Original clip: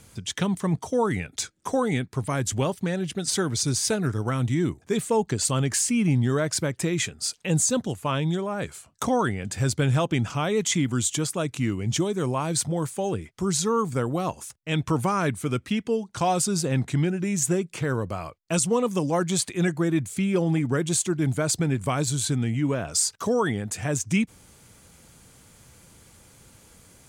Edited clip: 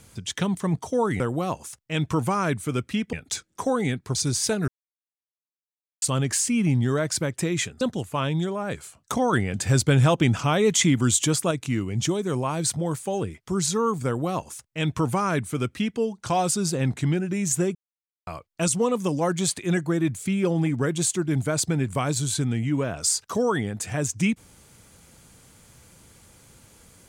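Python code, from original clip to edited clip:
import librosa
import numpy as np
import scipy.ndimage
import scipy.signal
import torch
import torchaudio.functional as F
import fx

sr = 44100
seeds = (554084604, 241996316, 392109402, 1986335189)

y = fx.edit(x, sr, fx.cut(start_s=2.22, length_s=1.34),
    fx.silence(start_s=4.09, length_s=1.34),
    fx.cut(start_s=7.22, length_s=0.5),
    fx.clip_gain(start_s=9.24, length_s=2.18, db=4.0),
    fx.duplicate(start_s=13.97, length_s=1.93, to_s=1.2),
    fx.silence(start_s=17.66, length_s=0.52), tone=tone)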